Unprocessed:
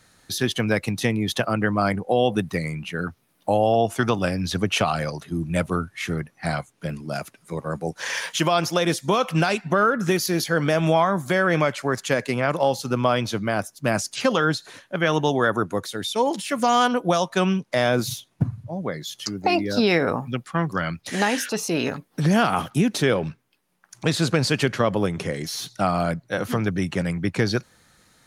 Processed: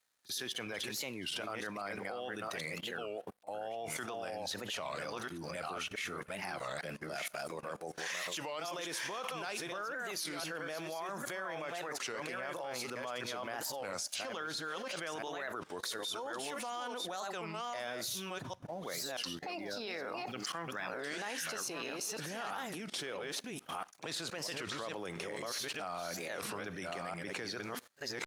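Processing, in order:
delay that plays each chunk backwards 662 ms, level −5 dB
bass and treble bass −11 dB, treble 0 dB
brickwall limiter −17 dBFS, peak gain reduction 10.5 dB
four-comb reverb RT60 0.54 s, combs from 32 ms, DRR 20 dB
dead-zone distortion −56.5 dBFS
echo ahead of the sound 45 ms −22 dB
output level in coarse steps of 21 dB
low-shelf EQ 380 Hz −7.5 dB
wow of a warped record 33 1/3 rpm, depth 250 cents
level +3.5 dB

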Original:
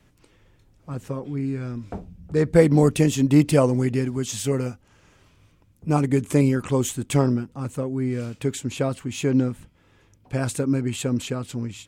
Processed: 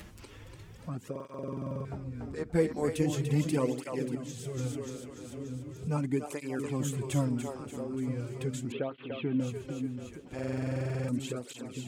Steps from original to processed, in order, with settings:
echo with a time of its own for lows and highs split 380 Hz, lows 460 ms, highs 291 ms, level −6.5 dB
upward compression, threshold −20 dBFS
0:04.15–0:04.57: tuned comb filter 58 Hz, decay 0.77 s, harmonics all, mix 60%
0:08.72–0:09.40: Butterworth low-pass 3,500 Hz 48 dB per octave
buffer that repeats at 0:01.11/0:10.34, samples 2,048, times 15
through-zero flanger with one copy inverted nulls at 0.39 Hz, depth 7.8 ms
level −8.5 dB

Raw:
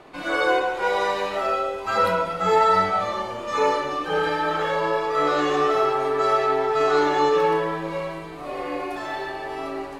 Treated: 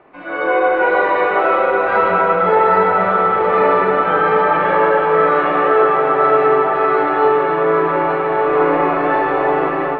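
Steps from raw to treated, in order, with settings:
low-shelf EQ 82 Hz −9 dB
mains-hum notches 50/100/150/200/250/300 Hz
feedback delay with all-pass diffusion 906 ms, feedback 59%, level −6.5 dB
convolution reverb RT60 5.3 s, pre-delay 93 ms, DRR 1.5 dB
automatic gain control gain up to 11.5 dB
low-pass filter 2,400 Hz 24 dB per octave
level −1 dB

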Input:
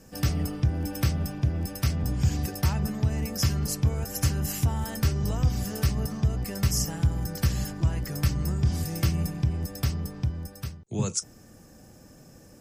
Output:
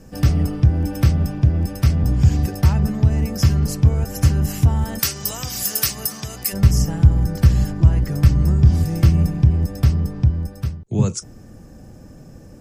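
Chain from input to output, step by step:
spectral tilt −1.5 dB per octave, from 0:04.98 +4 dB per octave, from 0:06.52 −2 dB per octave
level +5 dB

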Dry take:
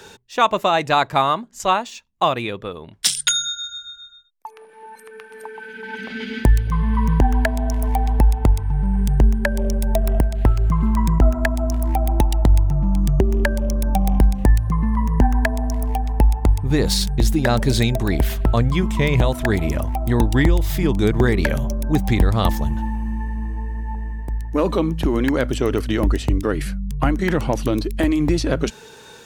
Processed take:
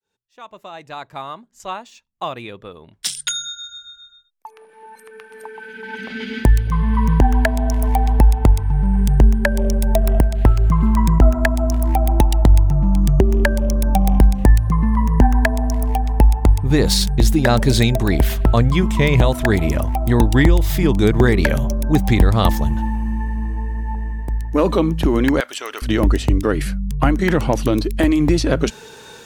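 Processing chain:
fade in at the beginning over 7.83 s
0:25.40–0:25.82: high-pass filter 1,100 Hz 12 dB per octave
level +3 dB

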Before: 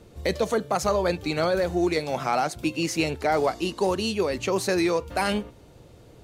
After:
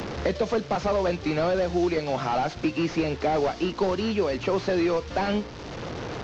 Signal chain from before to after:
linear delta modulator 32 kbit/s, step −38 dBFS
multiband upward and downward compressor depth 70%

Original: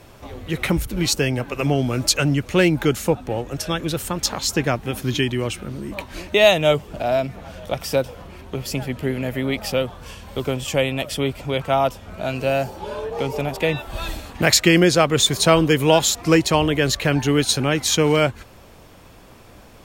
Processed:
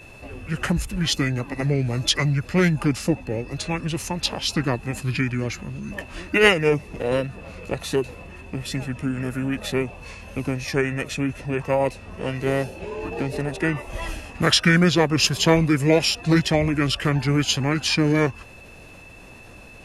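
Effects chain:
steady tone 3,500 Hz −41 dBFS
formants moved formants −5 semitones
level −2 dB

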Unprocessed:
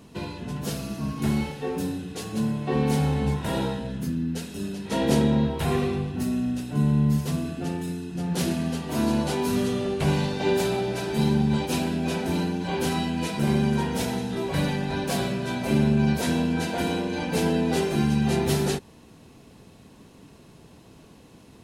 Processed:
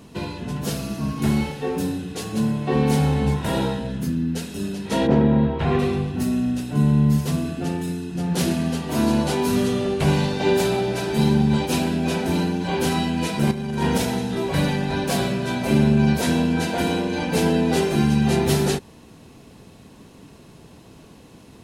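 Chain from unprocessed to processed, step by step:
0:05.06–0:05.78: low-pass filter 1,500 Hz → 3,300 Hz 12 dB per octave
0:13.51–0:13.98: compressor whose output falls as the input rises −26 dBFS, ratio −0.5
level +4 dB

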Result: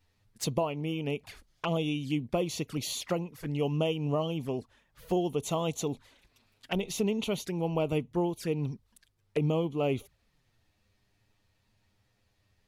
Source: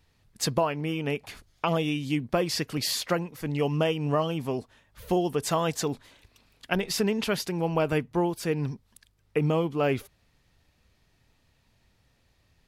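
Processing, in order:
flanger swept by the level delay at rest 10.3 ms, full sweep at −26 dBFS
level −2.5 dB

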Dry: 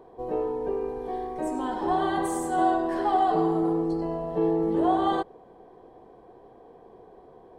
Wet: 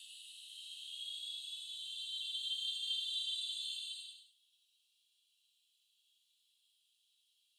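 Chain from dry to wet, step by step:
Chebyshev high-pass with heavy ripple 2,700 Hz, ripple 6 dB
extreme stretch with random phases 8.8×, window 0.10 s, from 0:04.77
level +9.5 dB

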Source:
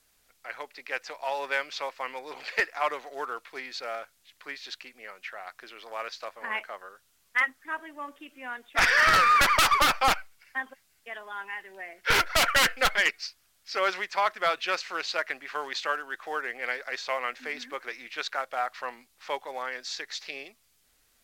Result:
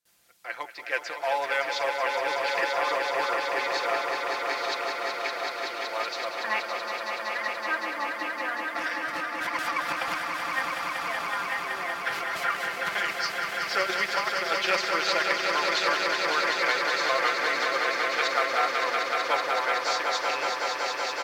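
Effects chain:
high-pass filter 85 Hz 12 dB per octave
noise gate with hold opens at −58 dBFS
comb filter 5.8 ms, depth 58%
compressor whose output falls as the input rises −26 dBFS, ratio −0.5
echo that builds up and dies away 188 ms, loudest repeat 5, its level −6 dB
level −1.5 dB

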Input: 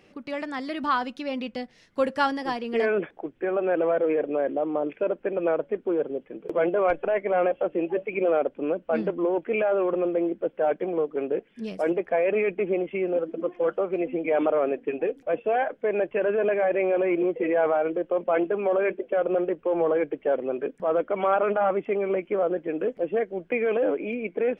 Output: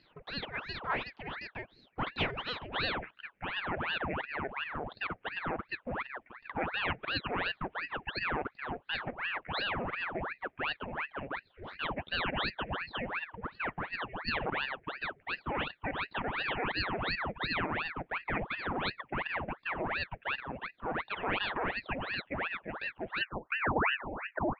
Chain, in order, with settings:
transistor ladder low-pass 2,200 Hz, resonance 75%, from 0:23.20 740 Hz
ring modulator whose carrier an LFO sweeps 1,200 Hz, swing 90%, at 2.8 Hz
level +2.5 dB

